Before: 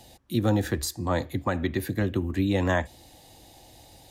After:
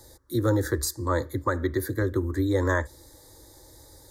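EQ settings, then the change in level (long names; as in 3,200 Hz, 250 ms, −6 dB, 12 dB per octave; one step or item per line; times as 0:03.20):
Butterworth band-reject 2,700 Hz, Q 2.3
phaser with its sweep stopped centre 730 Hz, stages 6
+4.0 dB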